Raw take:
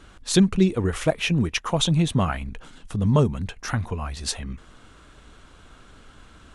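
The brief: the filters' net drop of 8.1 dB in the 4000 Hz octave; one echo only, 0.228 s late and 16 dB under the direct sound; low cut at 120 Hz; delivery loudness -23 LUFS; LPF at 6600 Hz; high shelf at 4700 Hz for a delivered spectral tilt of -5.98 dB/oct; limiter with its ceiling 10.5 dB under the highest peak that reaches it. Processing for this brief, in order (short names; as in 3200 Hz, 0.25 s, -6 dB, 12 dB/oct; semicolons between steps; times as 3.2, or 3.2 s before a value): HPF 120 Hz; LPF 6600 Hz; bell 4000 Hz -5.5 dB; high shelf 4700 Hz -9 dB; limiter -17 dBFS; echo 0.228 s -16 dB; gain +5.5 dB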